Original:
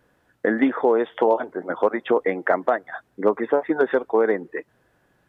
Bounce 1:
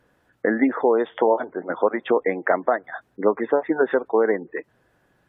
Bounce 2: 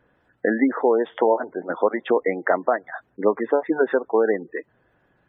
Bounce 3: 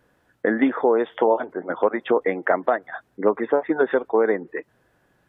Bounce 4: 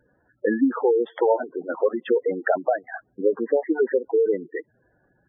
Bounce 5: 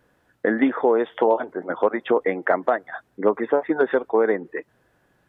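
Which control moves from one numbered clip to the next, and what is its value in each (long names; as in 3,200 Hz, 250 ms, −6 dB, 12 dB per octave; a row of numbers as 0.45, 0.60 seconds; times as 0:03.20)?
gate on every frequency bin, under each frame's peak: −35, −25, −50, −10, −60 decibels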